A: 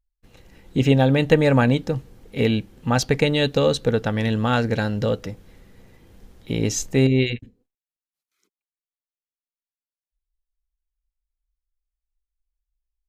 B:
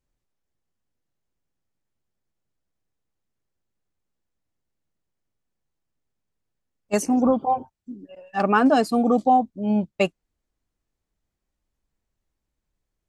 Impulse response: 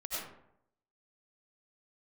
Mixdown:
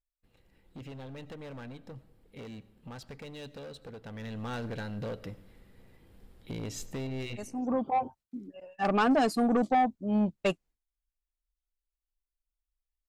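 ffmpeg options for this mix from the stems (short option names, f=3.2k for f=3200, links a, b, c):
-filter_complex "[0:a]equalizer=f=6.2k:t=o:w=0.34:g=-9,acompressor=threshold=-24dB:ratio=2.5,asoftclip=type=hard:threshold=-24.5dB,volume=-8.5dB,afade=t=in:st=4.02:d=0.52:silence=0.398107,asplit=3[a][b][c];[b]volume=-19.5dB[d];[1:a]agate=range=-33dB:threshold=-44dB:ratio=3:detection=peak,adelay=450,volume=-3.5dB[e];[c]apad=whole_len=596709[f];[e][f]sidechaincompress=threshold=-54dB:ratio=16:attack=45:release=501[g];[2:a]atrim=start_sample=2205[h];[d][h]afir=irnorm=-1:irlink=0[i];[a][g][i]amix=inputs=3:normalize=0,asoftclip=type=tanh:threshold=-19.5dB"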